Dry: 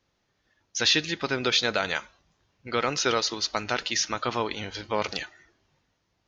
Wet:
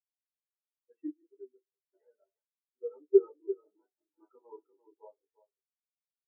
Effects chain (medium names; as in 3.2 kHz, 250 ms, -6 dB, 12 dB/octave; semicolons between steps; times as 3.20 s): treble shelf 2.8 kHz +11 dB; 3.52–4.25 s: compressor with a negative ratio -27 dBFS, ratio -0.5; delay 345 ms -4 dB; reverberation RT60 0.40 s, pre-delay 77 ms; 0.91–1.93 s: fade out; spectral contrast expander 4:1